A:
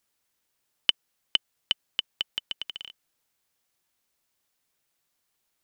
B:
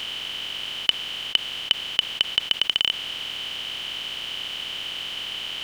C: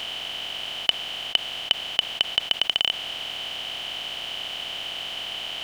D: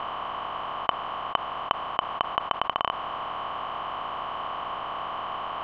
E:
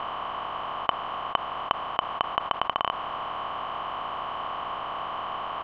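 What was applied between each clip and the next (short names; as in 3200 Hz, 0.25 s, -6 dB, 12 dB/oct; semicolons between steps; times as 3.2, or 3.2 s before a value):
per-bin compression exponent 0.2
bell 700 Hz +10 dB 0.51 oct; gain -1 dB
synth low-pass 1100 Hz, resonance Q 8.4; gain +2.5 dB
echo 0.251 s -20.5 dB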